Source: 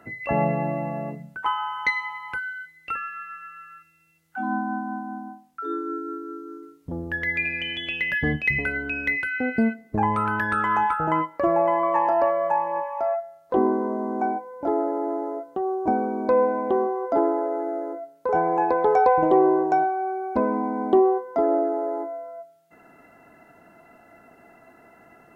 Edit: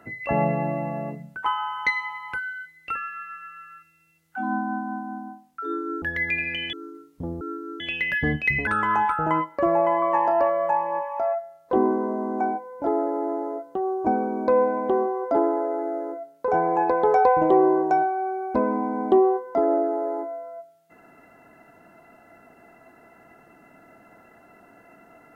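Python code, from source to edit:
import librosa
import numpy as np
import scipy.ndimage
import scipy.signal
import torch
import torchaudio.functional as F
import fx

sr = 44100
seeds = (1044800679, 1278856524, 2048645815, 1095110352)

y = fx.edit(x, sr, fx.swap(start_s=6.02, length_s=0.39, other_s=7.09, other_length_s=0.71),
    fx.cut(start_s=8.67, length_s=1.81), tone=tone)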